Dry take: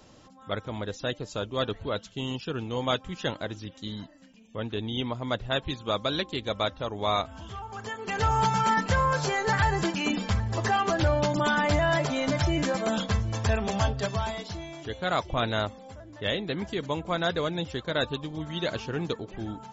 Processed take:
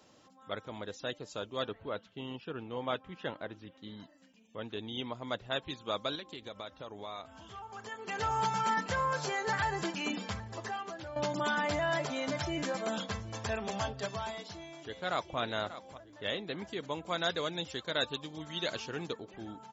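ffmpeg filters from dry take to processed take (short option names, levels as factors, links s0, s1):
-filter_complex "[0:a]asettb=1/sr,asplit=3[s0][s1][s2];[s0]atrim=end=1.684[s3];[s1]atrim=start=1.68:end=4,asetpts=PTS-STARTPTS,afade=t=in:d=0.004:c=qsin,afade=t=out:st=2.316:d=0.004:c=qsin,lowpass=2600[s4];[s2]atrim=start=3.996[s5];[s3][s4]acrossfade=d=0.004:c1=hsin:c2=qsin[s6];[s6][s5]acrossfade=d=0.004:c1=qsin:c2=hsin,asettb=1/sr,asplit=3[s7][s8][s9];[s7]atrim=end=6.154[s10];[s8]atrim=start=6.15:end=7.92,asetpts=PTS-STARTPTS,afade=t=in:d=0.004:c=qsin,afade=t=out:st=1.766:d=0.004:c=qsin,acompressor=threshold=0.0251:ratio=6:attack=3.2:release=140:knee=1:detection=peak[s11];[s9]atrim=start=7.916[s12];[s10][s11]acrossfade=d=0.004:c1=hsin:c2=qsin[s13];[s13][s12]acrossfade=d=0.004:c1=qsin:c2=hsin,asplit=2[s14][s15];[s15]afade=t=in:st=14.31:d=0.01,afade=t=out:st=15.38:d=0.01,aecho=0:1:590|1180|1770:0.223872|0.0671616|0.0201485[s16];[s14][s16]amix=inputs=2:normalize=0,asettb=1/sr,asplit=3[s17][s18][s19];[s17]atrim=end=17.034[s20];[s18]atrim=start=17.03:end=19.07,asetpts=PTS-STARTPTS,afade=t=in:d=0.004:c=qsin,afade=t=out:st=2.036:d=0.004:c=qsin,highshelf=f=2900:g=8[s21];[s19]atrim=start=19.066[s22];[s20][s21]acrossfade=d=0.004:c1=hsin:c2=qsin[s23];[s23][s22]acrossfade=d=0.004:c1=qsin:c2=hsin,asplit=2[s24][s25];[s24]atrim=end=11.16,asetpts=PTS-STARTPTS,afade=t=out:st=10.33:d=0.83:c=qua:silence=0.266073[s26];[s25]atrim=start=11.16,asetpts=PTS-STARTPTS,afade=t=in:d=0.004:c=hsin:silence=0.266073[s27];[s26][s27]concat=n=2:v=0:a=1,highpass=f=240:p=1,volume=0.501"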